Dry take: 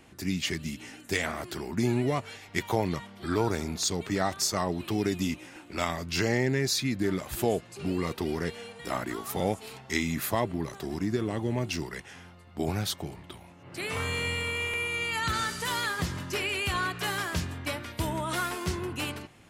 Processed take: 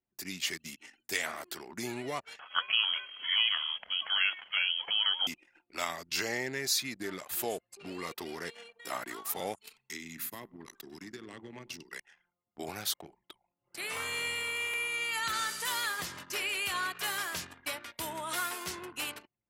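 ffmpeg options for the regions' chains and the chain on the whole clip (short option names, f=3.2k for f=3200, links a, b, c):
-filter_complex "[0:a]asettb=1/sr,asplit=3[a][b][c];[a]atrim=end=2.394[d];[b]atrim=start=2.39:end=5.27,asetpts=PTS-STARTPTS,afade=t=in:d=0.004:c=qsin,afade=t=out:st=2.876:d=0.004:c=qsin,highshelf=f=2.2k:g=10,acompressor=mode=upward:threshold=-34dB:ratio=2.5:attack=3.2:release=140:knee=2.83:detection=peak,lowpass=f=2.9k:t=q:w=0.5098,lowpass=f=2.9k:t=q:w=0.6013,lowpass=f=2.9k:t=q:w=0.9,lowpass=f=2.9k:t=q:w=2.563,afreqshift=-3400[e];[c]atrim=start=5.266[f];[d][e]acrossfade=d=0.004:c1=hsin:c2=qsin[g];[g][f]acrossfade=d=0.004:c1=qsin:c2=hsin,asettb=1/sr,asplit=3[h][i][j];[h]atrim=end=9.564[k];[i]atrim=start=9.56:end=11.92,asetpts=PTS-STARTPTS,afade=t=in:d=0.004:c=qsin,afade=t=out:st=2.356:d=0.004:c=qsin,equalizer=f=640:t=o:w=1.2:g=-9.5,acrossover=split=86|430[l][m][n];[l]acompressor=threshold=-57dB:ratio=4[o];[m]acompressor=threshold=-32dB:ratio=4[p];[n]acompressor=threshold=-40dB:ratio=4[q];[o][p][q]amix=inputs=3:normalize=0,aecho=1:1:98|196|294|392|490:0.266|0.122|0.0563|0.0259|0.0119,atrim=end_sample=104076[r];[j]atrim=start=11.916[s];[k][r]acrossfade=d=0.004:c1=hsin:c2=qsin[t];[t][s]acrossfade=d=0.004:c1=qsin:c2=hsin,highpass=f=870:p=1,anlmdn=0.0631,highshelf=f=12k:g=11,volume=-2dB"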